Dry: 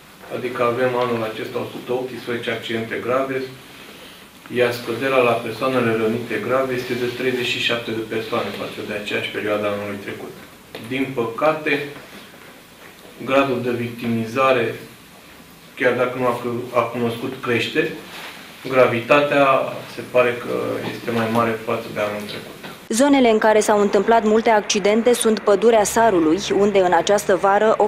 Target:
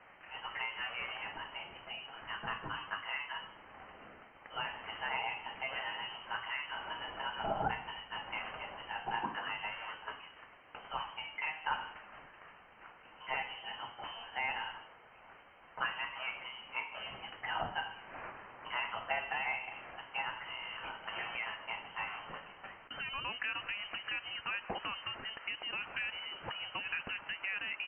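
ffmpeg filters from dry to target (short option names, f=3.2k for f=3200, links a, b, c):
-filter_complex "[0:a]acompressor=threshold=-19dB:ratio=3,aderivative,lowpass=f=2.8k:t=q:w=0.5098,lowpass=f=2.8k:t=q:w=0.6013,lowpass=f=2.8k:t=q:w=0.9,lowpass=f=2.8k:t=q:w=2.563,afreqshift=-3300,asplit=2[a][b];[b]aecho=0:1:152:0.0944[c];[a][c]amix=inputs=2:normalize=0,volume=1.5dB"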